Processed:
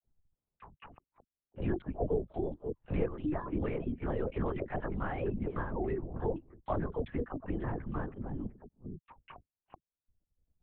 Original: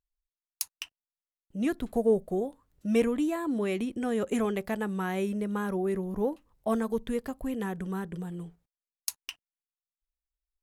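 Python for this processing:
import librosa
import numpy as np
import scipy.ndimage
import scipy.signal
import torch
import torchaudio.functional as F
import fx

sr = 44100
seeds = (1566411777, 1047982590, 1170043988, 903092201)

y = fx.reverse_delay(x, sr, ms=297, wet_db=-11.5)
y = scipy.signal.sosfilt(scipy.signal.butter(2, 1900.0, 'lowpass', fs=sr, output='sos'), y)
y = fx.env_lowpass(y, sr, base_hz=510.0, full_db=-26.0)
y = fx.dereverb_blind(y, sr, rt60_s=1.2)
y = fx.dispersion(y, sr, late='lows', ms=65.0, hz=650.0)
y = fx.lpc_vocoder(y, sr, seeds[0], excitation='whisper', order=8)
y = fx.band_squash(y, sr, depth_pct=70)
y = y * 10.0 ** (-3.5 / 20.0)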